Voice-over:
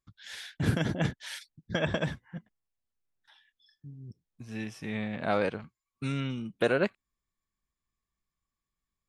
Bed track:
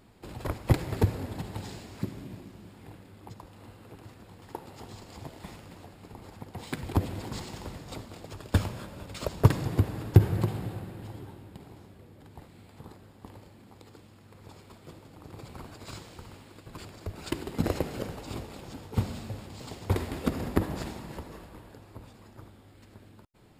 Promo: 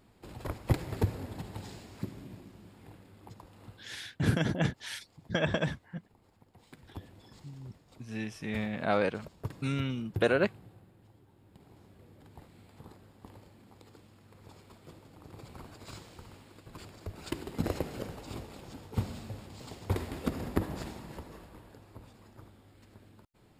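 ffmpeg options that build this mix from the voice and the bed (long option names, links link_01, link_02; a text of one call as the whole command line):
ffmpeg -i stem1.wav -i stem2.wav -filter_complex "[0:a]adelay=3600,volume=0dB[link_01];[1:a]volume=10dB,afade=type=out:start_time=3.66:duration=0.53:silence=0.199526,afade=type=in:start_time=11.28:duration=0.81:silence=0.188365[link_02];[link_01][link_02]amix=inputs=2:normalize=0" out.wav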